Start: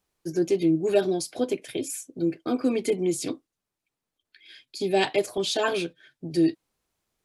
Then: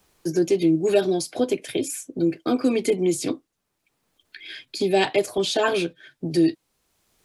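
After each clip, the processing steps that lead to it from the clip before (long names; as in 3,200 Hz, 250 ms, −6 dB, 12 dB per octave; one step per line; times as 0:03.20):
multiband upward and downward compressor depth 40%
level +3.5 dB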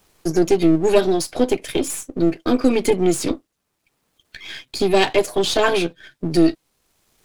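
gain on one half-wave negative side −7 dB
level +6.5 dB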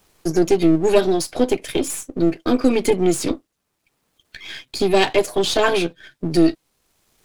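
no processing that can be heard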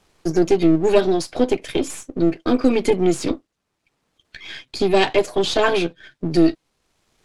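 high-frequency loss of the air 52 metres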